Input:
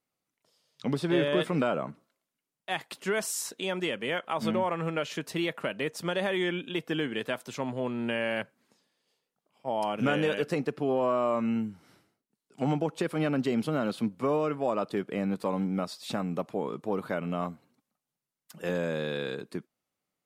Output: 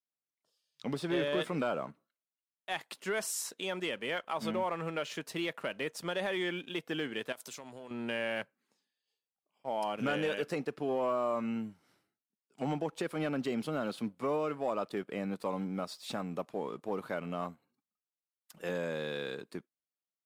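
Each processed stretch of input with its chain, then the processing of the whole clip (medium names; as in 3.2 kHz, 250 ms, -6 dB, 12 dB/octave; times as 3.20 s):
7.32–7.91 s: tone controls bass -3 dB, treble +10 dB + compression 16:1, threshold -37 dBFS
whole clip: spectral noise reduction 10 dB; bass shelf 250 Hz -6.5 dB; waveshaping leveller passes 1; trim -7 dB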